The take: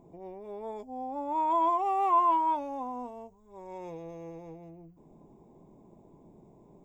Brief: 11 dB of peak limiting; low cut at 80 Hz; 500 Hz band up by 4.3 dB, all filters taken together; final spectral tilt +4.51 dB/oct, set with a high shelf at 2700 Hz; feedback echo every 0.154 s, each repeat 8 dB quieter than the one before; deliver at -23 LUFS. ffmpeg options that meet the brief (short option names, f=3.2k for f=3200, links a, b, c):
-af "highpass=80,equalizer=f=500:t=o:g=6.5,highshelf=f=2.7k:g=-6.5,alimiter=level_in=1.5dB:limit=-24dB:level=0:latency=1,volume=-1.5dB,aecho=1:1:154|308|462|616|770:0.398|0.159|0.0637|0.0255|0.0102,volume=11dB"